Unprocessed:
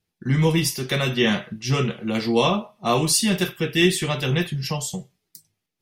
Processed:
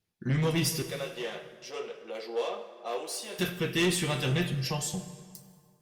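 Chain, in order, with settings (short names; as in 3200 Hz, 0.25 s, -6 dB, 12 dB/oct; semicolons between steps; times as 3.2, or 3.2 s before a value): soft clip -17.5 dBFS, distortion -12 dB; 0.82–3.39 ladder high-pass 410 Hz, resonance 55%; plate-style reverb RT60 2 s, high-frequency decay 0.7×, DRR 9 dB; gain -4 dB; Opus 64 kbps 48000 Hz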